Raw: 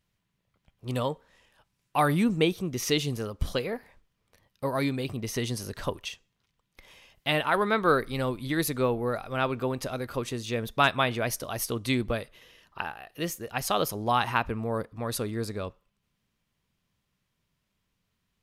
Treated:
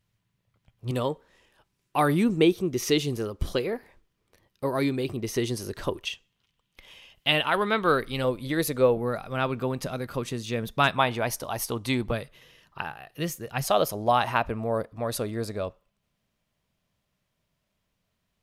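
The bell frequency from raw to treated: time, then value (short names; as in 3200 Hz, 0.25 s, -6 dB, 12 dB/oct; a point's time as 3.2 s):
bell +8.5 dB 0.48 oct
110 Hz
from 0.91 s 360 Hz
from 6.07 s 3000 Hz
from 8.24 s 530 Hz
from 8.97 s 170 Hz
from 10.97 s 870 Hz
from 12.11 s 140 Hz
from 13.64 s 630 Hz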